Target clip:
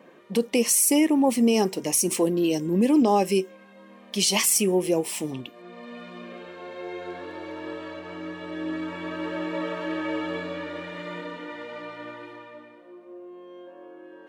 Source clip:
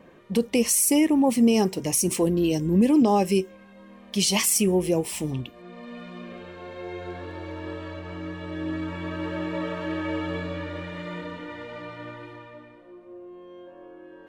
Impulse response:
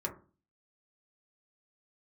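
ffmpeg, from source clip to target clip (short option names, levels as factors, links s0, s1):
-af "highpass=230,volume=1.12"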